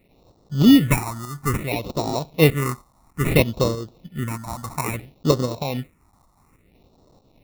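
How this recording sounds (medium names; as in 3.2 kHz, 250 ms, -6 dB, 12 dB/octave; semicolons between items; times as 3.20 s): a quantiser's noise floor 10-bit, dither triangular; tremolo saw up 3.2 Hz, depth 50%; aliases and images of a low sample rate 1.6 kHz, jitter 0%; phasing stages 4, 0.6 Hz, lowest notch 420–2300 Hz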